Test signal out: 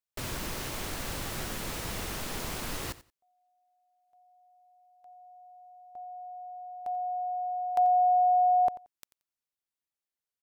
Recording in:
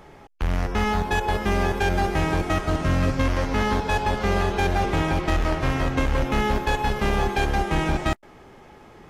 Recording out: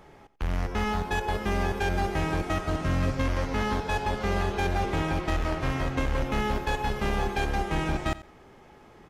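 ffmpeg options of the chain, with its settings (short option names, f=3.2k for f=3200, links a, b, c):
-af "aecho=1:1:89|178:0.141|0.024,volume=-5dB"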